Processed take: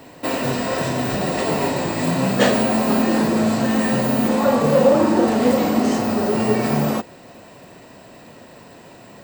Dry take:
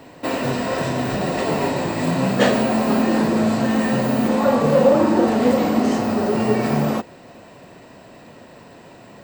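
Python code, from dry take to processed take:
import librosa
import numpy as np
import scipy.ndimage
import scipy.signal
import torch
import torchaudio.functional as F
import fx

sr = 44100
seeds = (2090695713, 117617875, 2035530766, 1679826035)

y = fx.high_shelf(x, sr, hz=5900.0, db=6.5)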